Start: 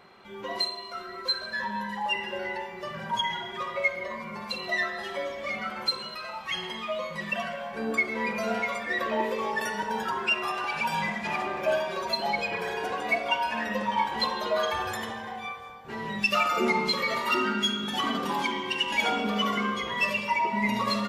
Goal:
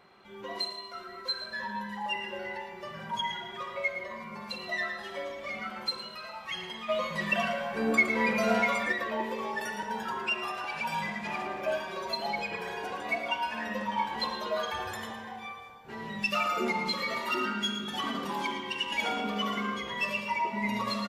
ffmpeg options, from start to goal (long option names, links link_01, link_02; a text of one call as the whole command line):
ffmpeg -i in.wav -filter_complex "[0:a]asplit=3[link_01][link_02][link_03];[link_01]afade=type=out:start_time=6.88:duration=0.02[link_04];[link_02]acontrast=86,afade=type=in:start_time=6.88:duration=0.02,afade=type=out:start_time=8.91:duration=0.02[link_05];[link_03]afade=type=in:start_time=8.91:duration=0.02[link_06];[link_04][link_05][link_06]amix=inputs=3:normalize=0,aecho=1:1:112:0.335,volume=-5dB" out.wav